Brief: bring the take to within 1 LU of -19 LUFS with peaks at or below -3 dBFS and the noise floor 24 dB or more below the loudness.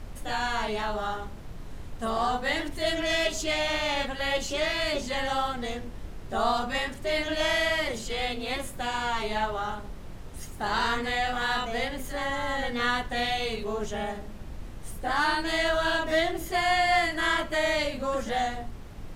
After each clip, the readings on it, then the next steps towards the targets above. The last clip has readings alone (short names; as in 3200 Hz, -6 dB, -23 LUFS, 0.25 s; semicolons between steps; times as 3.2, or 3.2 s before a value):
noise floor -40 dBFS; noise floor target -52 dBFS; loudness -28.0 LUFS; peak -12.5 dBFS; loudness target -19.0 LUFS
-> noise print and reduce 12 dB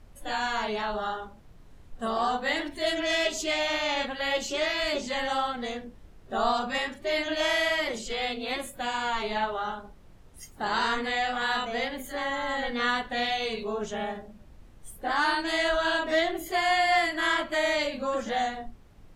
noise floor -51 dBFS; noise floor target -52 dBFS
-> noise print and reduce 6 dB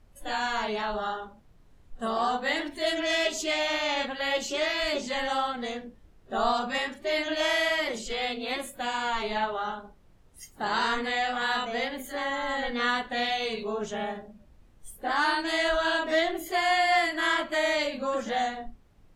noise floor -57 dBFS; loudness -28.0 LUFS; peak -12.5 dBFS; loudness target -19.0 LUFS
-> gain +9 dB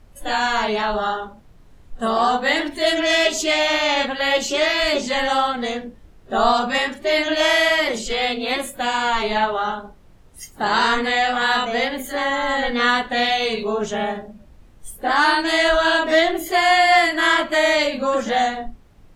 loudness -19.0 LUFS; peak -3.5 dBFS; noise floor -48 dBFS